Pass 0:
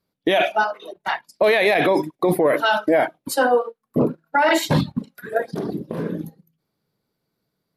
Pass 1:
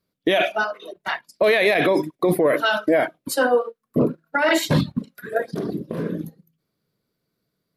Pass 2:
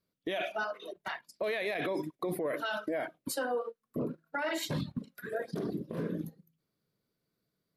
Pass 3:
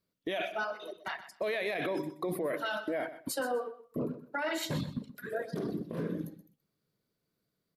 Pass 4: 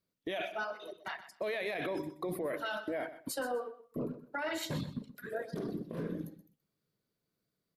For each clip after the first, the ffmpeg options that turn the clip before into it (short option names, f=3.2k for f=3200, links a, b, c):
-af "equalizer=f=840:w=4.6:g=-8.5"
-af "alimiter=limit=-19dB:level=0:latency=1:release=104,volume=-6.5dB"
-af "aecho=1:1:126|252:0.211|0.0423"
-af "tremolo=f=220:d=0.182,volume=-2dB"